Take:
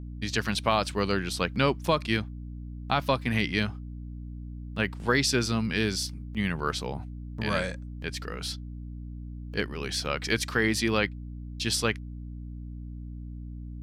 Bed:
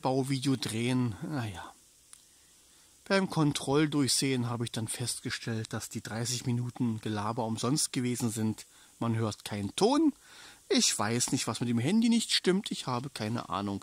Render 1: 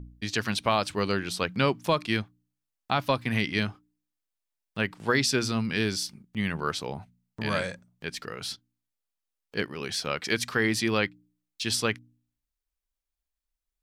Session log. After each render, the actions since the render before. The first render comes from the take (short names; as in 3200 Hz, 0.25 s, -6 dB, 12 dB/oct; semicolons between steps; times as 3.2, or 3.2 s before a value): de-hum 60 Hz, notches 5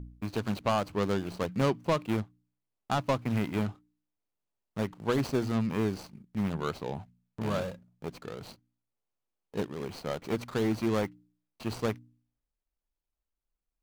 median filter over 25 samples; soft clip -16 dBFS, distortion -23 dB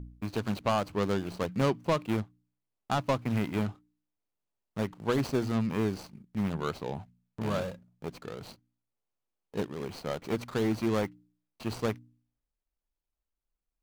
nothing audible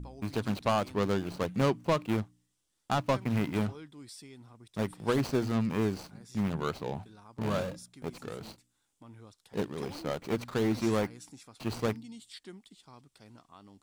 add bed -21 dB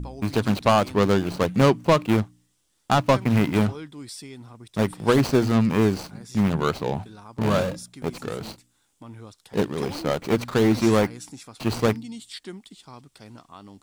gain +9.5 dB